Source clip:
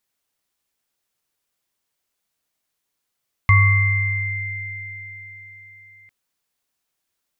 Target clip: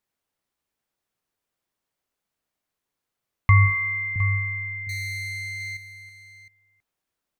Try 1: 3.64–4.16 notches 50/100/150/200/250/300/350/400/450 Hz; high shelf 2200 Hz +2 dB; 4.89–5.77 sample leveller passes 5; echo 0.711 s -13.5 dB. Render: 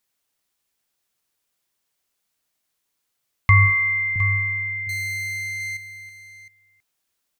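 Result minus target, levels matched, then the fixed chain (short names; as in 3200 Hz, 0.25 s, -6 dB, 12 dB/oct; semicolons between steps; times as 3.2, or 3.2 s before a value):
4000 Hz band -3.0 dB
3.64–4.16 notches 50/100/150/200/250/300/350/400/450 Hz; high shelf 2200 Hz -9 dB; 4.89–5.77 sample leveller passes 5; echo 0.711 s -13.5 dB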